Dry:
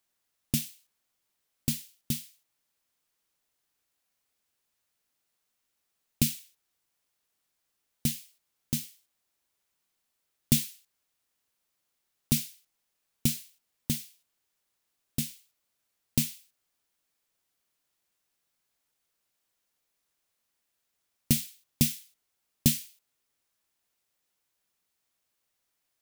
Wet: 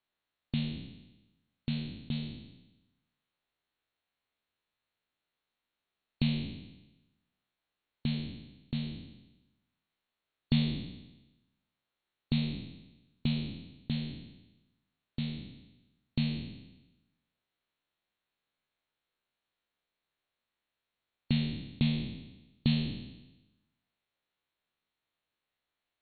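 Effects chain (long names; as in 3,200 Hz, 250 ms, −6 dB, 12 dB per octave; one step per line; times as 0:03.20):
peak hold with a decay on every bin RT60 1.04 s
linear-phase brick-wall low-pass 4,400 Hz
level −5 dB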